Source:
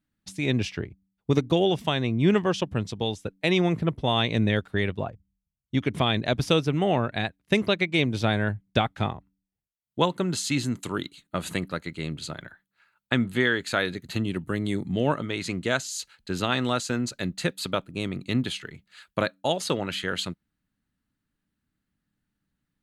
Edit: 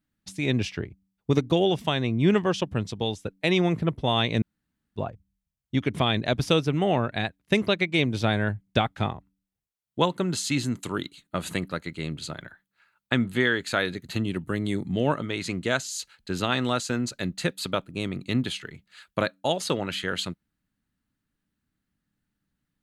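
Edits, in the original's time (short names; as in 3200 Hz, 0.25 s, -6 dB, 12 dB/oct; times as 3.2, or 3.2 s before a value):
4.42–4.96 room tone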